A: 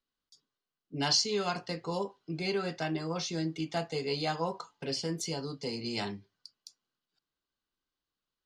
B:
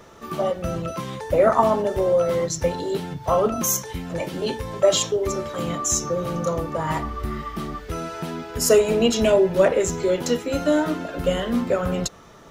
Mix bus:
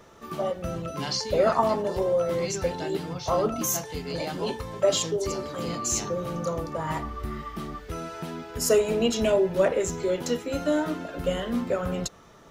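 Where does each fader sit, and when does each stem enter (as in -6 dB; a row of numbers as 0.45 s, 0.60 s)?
-3.0 dB, -5.0 dB; 0.00 s, 0.00 s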